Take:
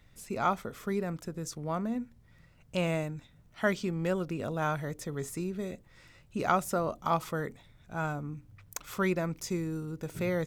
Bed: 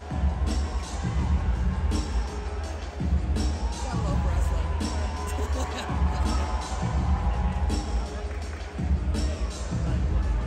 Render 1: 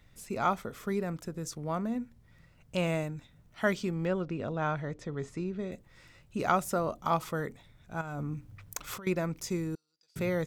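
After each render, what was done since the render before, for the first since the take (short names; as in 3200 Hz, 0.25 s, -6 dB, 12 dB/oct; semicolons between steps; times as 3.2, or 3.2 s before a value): 4.05–5.72 air absorption 130 m; 8.01–9.07 negative-ratio compressor -38 dBFS; 9.75–10.16 band-pass 4800 Hz, Q 12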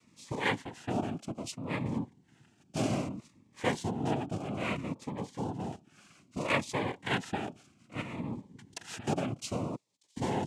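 noise vocoder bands 4; cascading phaser falling 0.62 Hz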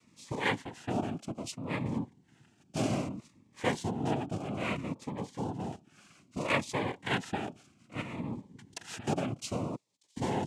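nothing audible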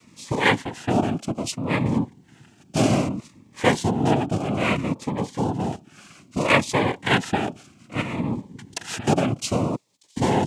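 gain +11.5 dB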